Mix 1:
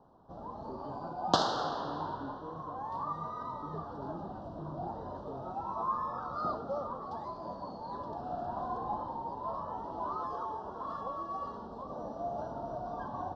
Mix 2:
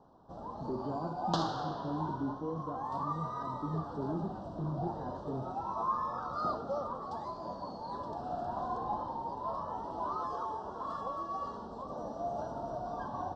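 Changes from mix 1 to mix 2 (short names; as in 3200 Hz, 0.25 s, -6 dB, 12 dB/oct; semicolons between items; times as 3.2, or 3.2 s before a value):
speech +8.5 dB; first sound: remove air absorption 99 m; second sound -7.0 dB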